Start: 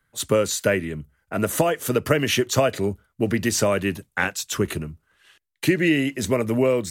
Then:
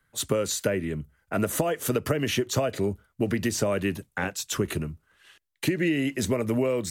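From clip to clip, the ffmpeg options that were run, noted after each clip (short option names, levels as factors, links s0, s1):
-filter_complex "[0:a]acrossover=split=760[s0][s1];[s1]alimiter=limit=0.133:level=0:latency=1:release=372[s2];[s0][s2]amix=inputs=2:normalize=0,acompressor=threshold=0.0891:ratio=6"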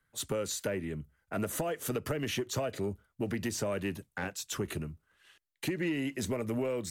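-af "asoftclip=type=tanh:threshold=0.15,volume=0.473"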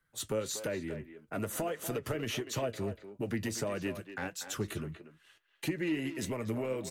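-filter_complex "[0:a]flanger=delay=5.8:depth=3.8:regen=55:speed=1.6:shape=sinusoidal,asplit=2[s0][s1];[s1]adelay=240,highpass=300,lowpass=3400,asoftclip=type=hard:threshold=0.02,volume=0.355[s2];[s0][s2]amix=inputs=2:normalize=0,volume=1.33"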